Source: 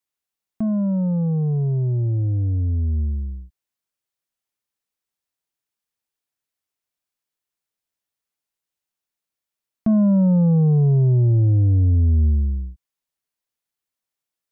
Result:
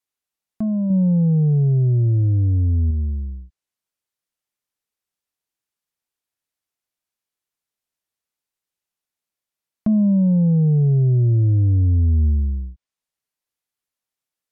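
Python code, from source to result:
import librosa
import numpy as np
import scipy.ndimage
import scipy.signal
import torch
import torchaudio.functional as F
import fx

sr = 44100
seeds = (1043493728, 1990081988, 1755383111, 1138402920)

y = fx.env_lowpass_down(x, sr, base_hz=460.0, full_db=-18.0)
y = fx.peak_eq(y, sr, hz=160.0, db=4.5, octaves=2.7, at=(0.9, 2.91))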